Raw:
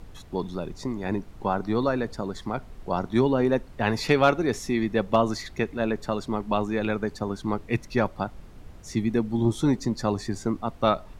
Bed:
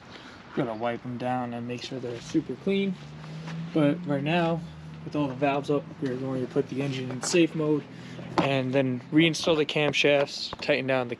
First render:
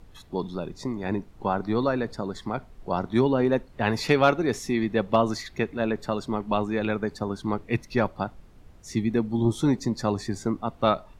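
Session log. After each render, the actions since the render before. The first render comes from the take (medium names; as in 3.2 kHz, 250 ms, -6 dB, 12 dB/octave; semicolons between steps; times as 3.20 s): noise print and reduce 6 dB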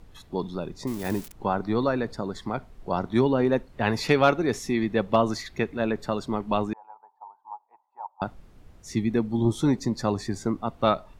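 0.87–1.32 s: zero-crossing glitches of -27.5 dBFS; 6.73–8.22 s: Butterworth band-pass 880 Hz, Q 5.7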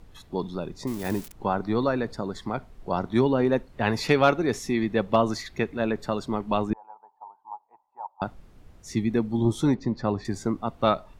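6.70–8.19 s: tilt EQ -2.5 dB/octave; 9.74–10.25 s: distance through air 230 m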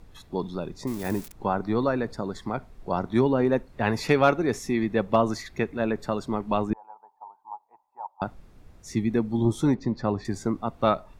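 band-stop 3 kHz, Q 20; dynamic bell 3.9 kHz, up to -4 dB, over -46 dBFS, Q 1.4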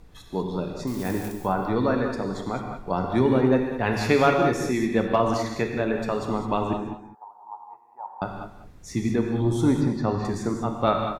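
delay 199 ms -12.5 dB; gated-style reverb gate 230 ms flat, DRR 2.5 dB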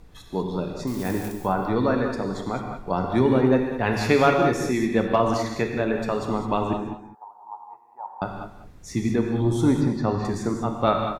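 trim +1 dB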